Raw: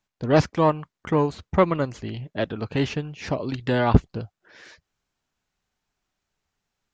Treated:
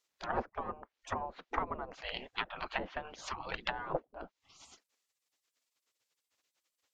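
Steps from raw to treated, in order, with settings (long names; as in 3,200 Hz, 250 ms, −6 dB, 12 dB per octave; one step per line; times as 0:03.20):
treble cut that deepens with the level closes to 460 Hz, closed at −19 dBFS
gate on every frequency bin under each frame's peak −20 dB weak
level +5.5 dB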